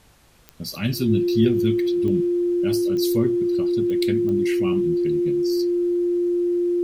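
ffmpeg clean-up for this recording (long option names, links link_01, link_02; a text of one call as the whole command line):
ffmpeg -i in.wav -af "adeclick=threshold=4,bandreject=frequency=50.8:width_type=h:width=4,bandreject=frequency=101.6:width_type=h:width=4,bandreject=frequency=152.4:width_type=h:width=4,bandreject=frequency=350:width=30,agate=range=-21dB:threshold=-25dB" out.wav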